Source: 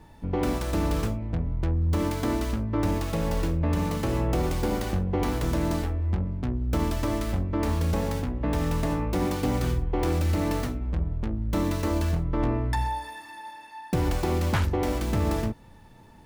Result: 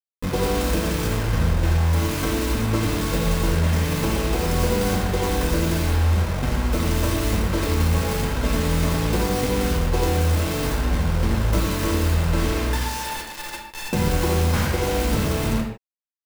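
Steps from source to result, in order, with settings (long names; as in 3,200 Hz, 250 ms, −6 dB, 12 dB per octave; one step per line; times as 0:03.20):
single-tap delay 85 ms −6.5 dB
downward compressor 16 to 1, threshold −26 dBFS, peak gain reduction 9.5 dB
bit-depth reduction 6 bits, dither none
convolution reverb, pre-delay 4 ms, DRR −1 dB
level +5.5 dB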